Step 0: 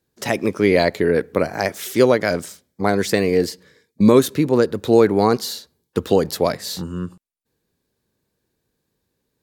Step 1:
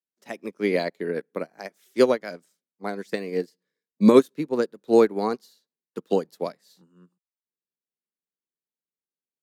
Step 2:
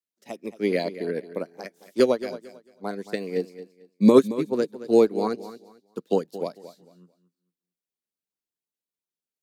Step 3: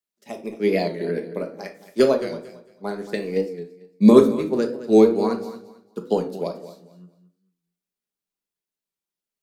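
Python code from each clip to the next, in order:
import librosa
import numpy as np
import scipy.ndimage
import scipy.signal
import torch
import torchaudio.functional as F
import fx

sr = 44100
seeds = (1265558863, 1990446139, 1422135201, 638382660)

y1 = scipy.signal.sosfilt(scipy.signal.butter(6, 160.0, 'highpass', fs=sr, output='sos'), x)
y1 = fx.upward_expand(y1, sr, threshold_db=-29.0, expansion=2.5)
y2 = fx.filter_lfo_notch(y1, sr, shape='saw_up', hz=5.5, low_hz=720.0, high_hz=2400.0, q=1.3)
y2 = fx.echo_feedback(y2, sr, ms=223, feedback_pct=24, wet_db=-14.5)
y3 = fx.room_shoebox(y2, sr, seeds[0], volume_m3=480.0, walls='furnished', distance_m=1.3)
y3 = fx.record_warp(y3, sr, rpm=45.0, depth_cents=100.0)
y3 = F.gain(torch.from_numpy(y3), 1.0).numpy()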